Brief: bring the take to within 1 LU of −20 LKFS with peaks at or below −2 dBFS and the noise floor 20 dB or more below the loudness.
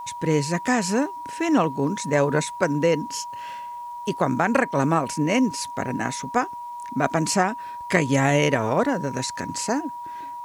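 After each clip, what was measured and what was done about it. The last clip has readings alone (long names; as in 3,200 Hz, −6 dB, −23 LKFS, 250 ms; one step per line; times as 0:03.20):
interfering tone 960 Hz; level of the tone −32 dBFS; integrated loudness −23.5 LKFS; sample peak −6.5 dBFS; target loudness −20.0 LKFS
→ notch filter 960 Hz, Q 30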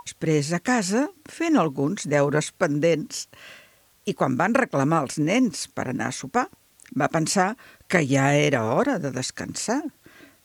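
interfering tone none found; integrated loudness −23.5 LKFS; sample peak −6.5 dBFS; target loudness −20.0 LKFS
→ level +3.5 dB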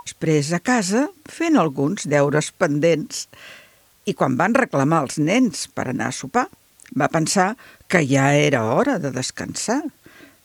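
integrated loudness −20.0 LKFS; sample peak −3.0 dBFS; background noise floor −57 dBFS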